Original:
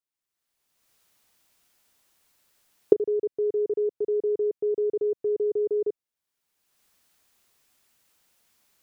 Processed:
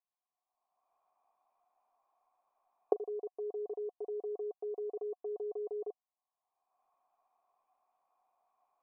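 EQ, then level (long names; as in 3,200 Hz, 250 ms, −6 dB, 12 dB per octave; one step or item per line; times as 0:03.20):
formant resonators in series a
parametric band 93 Hz −14.5 dB 2.2 octaves
+12.0 dB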